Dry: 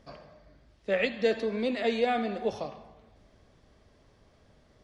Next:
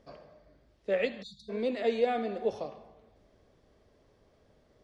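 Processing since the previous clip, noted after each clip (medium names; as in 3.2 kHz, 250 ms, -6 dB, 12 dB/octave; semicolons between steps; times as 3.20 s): spectral selection erased 1.22–1.49 s, 200–3400 Hz; peaking EQ 450 Hz +6.5 dB 1.3 oct; trim -6 dB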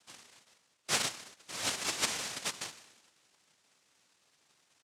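comb 3.5 ms, depth 41%; noise-vocoded speech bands 1; in parallel at -6.5 dB: saturation -18 dBFS, distortion -16 dB; on the sum: trim -8 dB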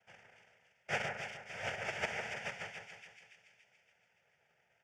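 distance through air 240 m; static phaser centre 1.1 kHz, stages 6; two-band feedback delay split 2.1 kHz, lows 151 ms, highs 284 ms, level -6 dB; trim +3 dB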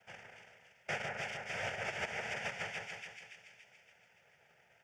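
compression 6:1, threshold -43 dBFS, peak gain reduction 12 dB; trim +7 dB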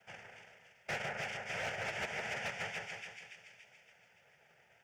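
flange 1.8 Hz, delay 4.4 ms, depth 6.2 ms, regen -67%; hard clipper -37.5 dBFS, distortion -17 dB; trim +5 dB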